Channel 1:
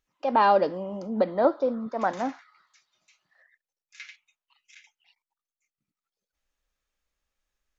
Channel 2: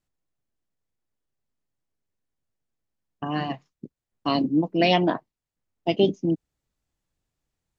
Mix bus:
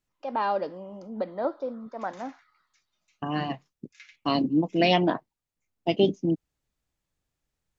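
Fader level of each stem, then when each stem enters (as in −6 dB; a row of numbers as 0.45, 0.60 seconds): −7.0, −1.5 decibels; 0.00, 0.00 seconds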